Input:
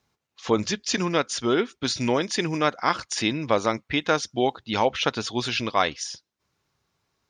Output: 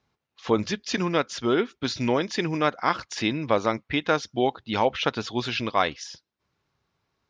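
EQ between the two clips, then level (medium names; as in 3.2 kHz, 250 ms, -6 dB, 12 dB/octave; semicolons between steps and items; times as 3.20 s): distance through air 160 m; treble shelf 6.8 kHz +7 dB; 0.0 dB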